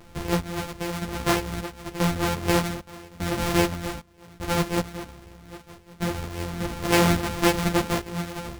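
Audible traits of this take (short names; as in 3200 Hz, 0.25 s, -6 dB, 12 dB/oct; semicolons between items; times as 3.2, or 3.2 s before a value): a buzz of ramps at a fixed pitch in blocks of 256 samples; random-step tremolo 2.5 Hz, depth 95%; a shimmering, thickened sound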